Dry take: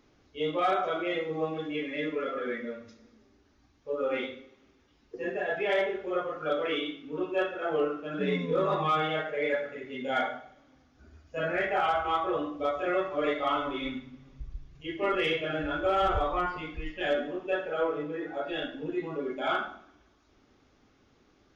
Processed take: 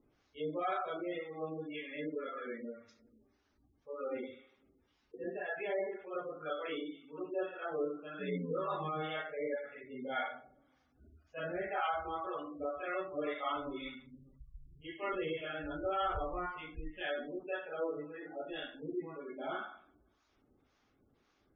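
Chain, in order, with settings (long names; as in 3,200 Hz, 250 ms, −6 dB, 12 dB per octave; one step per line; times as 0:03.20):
two-band tremolo in antiphase 1.9 Hz, depth 70%, crossover 670 Hz
gate on every frequency bin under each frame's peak −25 dB strong
level −5.5 dB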